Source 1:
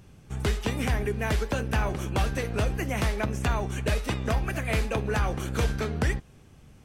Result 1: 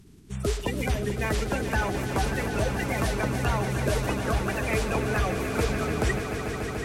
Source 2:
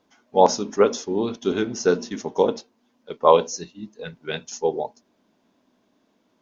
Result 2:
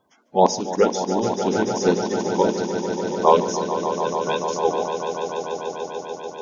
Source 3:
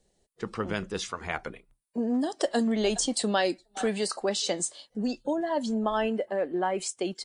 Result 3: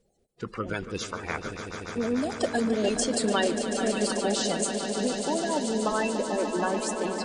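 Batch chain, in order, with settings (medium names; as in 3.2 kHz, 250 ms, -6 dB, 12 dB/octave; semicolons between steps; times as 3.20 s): coarse spectral quantiser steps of 30 dB; echo with a slow build-up 146 ms, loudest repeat 5, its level -11 dB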